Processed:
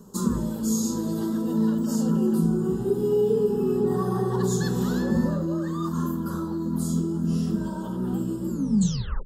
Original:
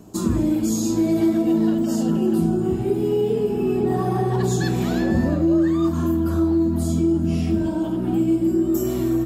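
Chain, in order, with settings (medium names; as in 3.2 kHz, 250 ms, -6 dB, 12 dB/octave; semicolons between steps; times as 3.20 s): tape stop on the ending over 0.77 s; static phaser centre 460 Hz, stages 8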